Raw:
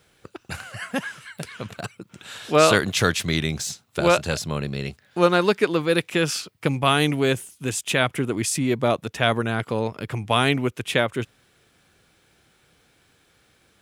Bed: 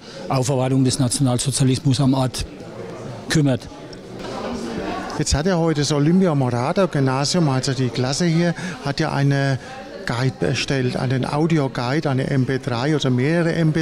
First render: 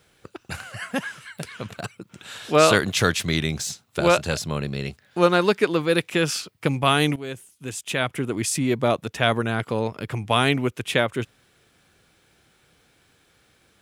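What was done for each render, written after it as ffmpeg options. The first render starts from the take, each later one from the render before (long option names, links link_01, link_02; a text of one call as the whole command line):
ffmpeg -i in.wav -filter_complex "[0:a]asplit=2[link_01][link_02];[link_01]atrim=end=7.16,asetpts=PTS-STARTPTS,afade=type=out:start_time=7.156:duration=0.004:curve=hsin:silence=0.177828[link_03];[link_02]atrim=start=7.16,asetpts=PTS-STARTPTS,afade=type=in:duration=1.4:silence=0.177828[link_04];[link_03][link_04]concat=n=2:v=0:a=1" out.wav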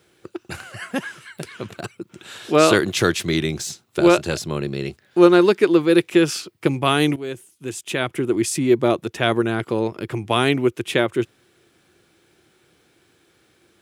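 ffmpeg -i in.wav -af "highpass=73,equalizer=frequency=350:width=3.8:gain=11.5" out.wav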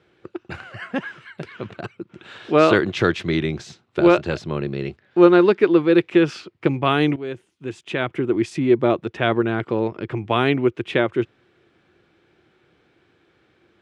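ffmpeg -i in.wav -af "lowpass=2900" out.wav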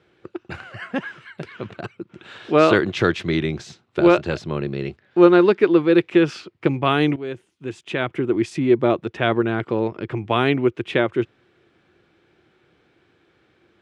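ffmpeg -i in.wav -af anull out.wav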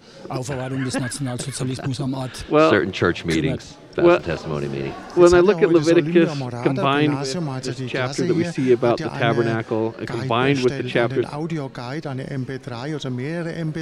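ffmpeg -i in.wav -i bed.wav -filter_complex "[1:a]volume=-8dB[link_01];[0:a][link_01]amix=inputs=2:normalize=0" out.wav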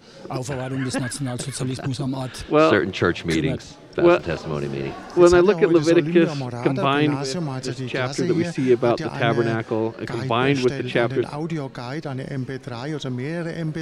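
ffmpeg -i in.wav -af "volume=-1dB" out.wav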